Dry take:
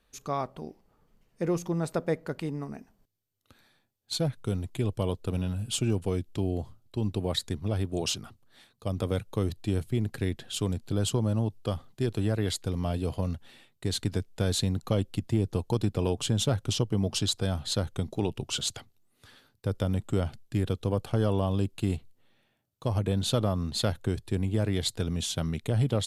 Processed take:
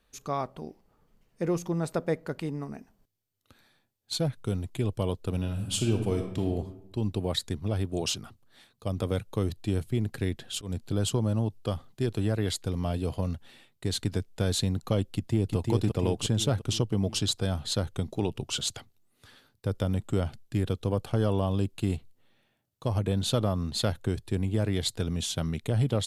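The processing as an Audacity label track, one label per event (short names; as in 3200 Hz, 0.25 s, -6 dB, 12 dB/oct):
5.370000	6.480000	reverb throw, RT60 0.95 s, DRR 4 dB
10.190000	10.860000	auto swell 0.137 s
15.140000	15.560000	echo throw 0.35 s, feedback 55%, level -3 dB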